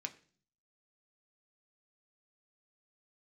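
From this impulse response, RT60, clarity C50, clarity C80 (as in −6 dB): 0.45 s, 16.5 dB, 20.0 dB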